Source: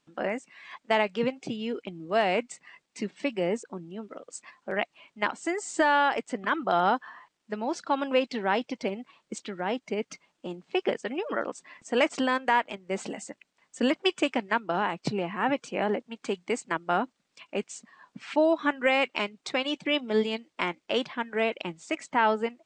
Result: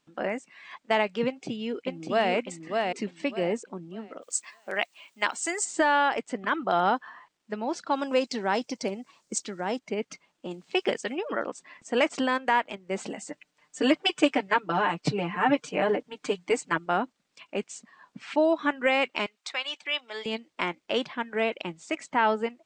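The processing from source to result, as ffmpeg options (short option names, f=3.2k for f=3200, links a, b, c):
-filter_complex "[0:a]asplit=2[a][b];[b]afade=t=in:st=1.26:d=0.01,afade=t=out:st=2.32:d=0.01,aecho=0:1:600|1200|1800|2400:0.707946|0.176986|0.0442466|0.0110617[c];[a][c]amix=inputs=2:normalize=0,asplit=3[d][e][f];[d]afade=t=out:st=4.21:d=0.02[g];[e]aemphasis=mode=production:type=riaa,afade=t=in:st=4.21:d=0.02,afade=t=out:st=5.64:d=0.02[h];[f]afade=t=in:st=5.64:d=0.02[i];[g][h][i]amix=inputs=3:normalize=0,asettb=1/sr,asplit=3[j][k][l];[j]atrim=end=7.914[m];[k]atrim=start=7.91:end=9.79,asetpts=PTS-STARTPTS,afade=t=in:d=0.004:c=qsin,afade=t=out:st=1.876:d=0.004:c=qsin,highshelf=f=4.3k:t=q:w=1.5:g=9.5[n];[l]atrim=start=9.786[o];[m][n]acrossfade=d=0.004:c1=hsin:c2=qsin[p];[p][o]acrossfade=d=0.004:c1=qsin:c2=hsin,asettb=1/sr,asplit=3[q][r][s];[q]atrim=end=10.514[t];[r]atrim=start=10.51:end=11.15,asetpts=PTS-STARTPTS,afade=t=in:d=0.004:c=qsin,afade=t=out:st=0.636:d=0.004:c=qsin,highshelf=f=3.5k:g=11.5[u];[s]atrim=start=11.146[v];[t][u]acrossfade=d=0.004:c1=hsin:c2=qsin[w];[w][v]acrossfade=d=0.004:c1=qsin:c2=hsin,asettb=1/sr,asplit=3[x][y][z];[x]atrim=end=13.264[aa];[y]atrim=start=13.26:end=16.86,asetpts=PTS-STARTPTS,afade=t=in:d=0.004:c=qsin,afade=t=out:st=3.596:d=0.004:c=qsin,aecho=1:1:6.7:0.97,atrim=end_sample=158760[ab];[z]atrim=start=16.856[ac];[aa][ab]acrossfade=d=0.004:c1=hsin:c2=qsin[ad];[ad][ac]acrossfade=d=0.004:c1=qsin:c2=hsin,asettb=1/sr,asplit=3[ae][af][ag];[ae]atrim=end=19.264[ah];[af]atrim=start=19.26:end=20.26,asetpts=PTS-STARTPTS,afade=t=in:d=0.004:c=qsin,afade=t=out:st=0.996:d=0.004:c=qsin,highpass=1k[ai];[ag]atrim=start=20.256[aj];[ah][ai]acrossfade=d=0.004:c1=hsin:c2=qsin[ak];[ak][aj]acrossfade=d=0.004:c1=qsin:c2=hsin"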